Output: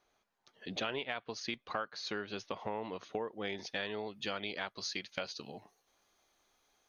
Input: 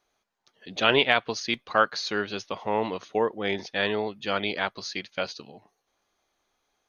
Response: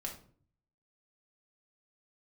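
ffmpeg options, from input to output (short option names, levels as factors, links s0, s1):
-af "asetnsamples=n=441:p=0,asendcmd='3.28 highshelf g 5',highshelf=f=4100:g=-4.5,acompressor=threshold=0.0158:ratio=5"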